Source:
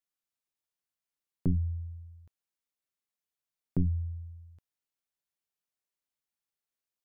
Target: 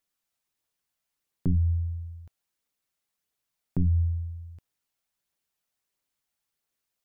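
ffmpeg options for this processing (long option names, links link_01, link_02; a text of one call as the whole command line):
ffmpeg -i in.wav -af "aphaser=in_gain=1:out_gain=1:delay=1.6:decay=0.23:speed=1.5:type=triangular,alimiter=level_in=2dB:limit=-24dB:level=0:latency=1:release=139,volume=-2dB,volume=7.5dB" out.wav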